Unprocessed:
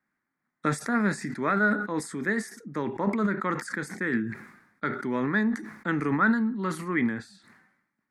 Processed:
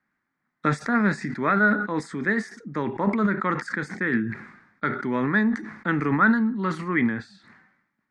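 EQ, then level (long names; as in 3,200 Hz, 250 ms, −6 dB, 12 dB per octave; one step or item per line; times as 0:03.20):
high-frequency loss of the air 120 metres
parametric band 390 Hz −3 dB 2.1 octaves
+5.5 dB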